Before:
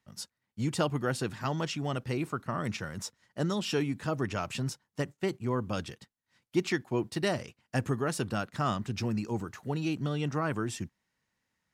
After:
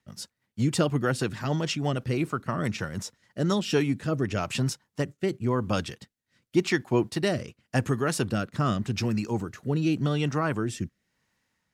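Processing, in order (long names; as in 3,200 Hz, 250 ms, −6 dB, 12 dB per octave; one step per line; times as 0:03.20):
rotating-speaker cabinet horn 6.3 Hz, later 0.9 Hz, at 0:03.12
level +7 dB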